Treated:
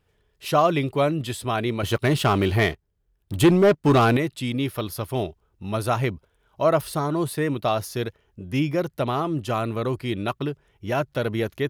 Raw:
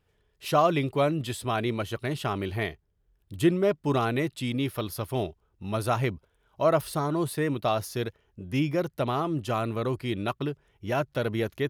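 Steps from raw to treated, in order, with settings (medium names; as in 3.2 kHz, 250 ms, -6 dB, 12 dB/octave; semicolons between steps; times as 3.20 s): 1.83–4.17 s: waveshaping leveller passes 2; trim +3 dB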